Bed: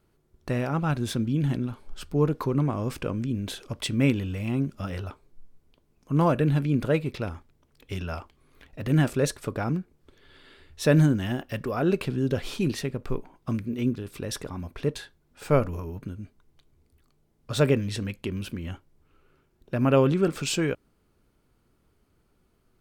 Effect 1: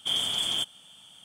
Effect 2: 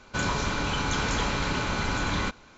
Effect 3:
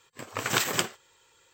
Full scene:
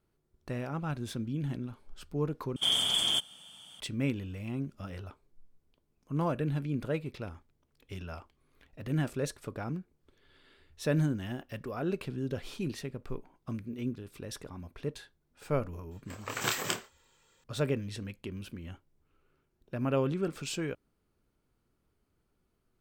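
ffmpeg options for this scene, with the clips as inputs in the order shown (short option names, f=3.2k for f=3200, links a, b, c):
-filter_complex "[0:a]volume=-9dB[a];[3:a]asplit=2[b][c];[c]adelay=27,volume=-6dB[d];[b][d]amix=inputs=2:normalize=0[e];[a]asplit=2[f][g];[f]atrim=end=2.564[h];[1:a]atrim=end=1.24[i];[g]atrim=start=3.796[j];[e]atrim=end=1.53,asetpts=PTS-STARTPTS,volume=-6.5dB,afade=t=in:d=0.004:c=hsin,afade=t=out:st=1.526:d=0.004:c=hsin,adelay=15910[k];[h][i]acrossfade=d=0.004:c1=hsin:c2=hsin[l];[l][j]acrossfade=d=0.004:c1=hsin:c2=hsin[m];[m][k]amix=inputs=2:normalize=0"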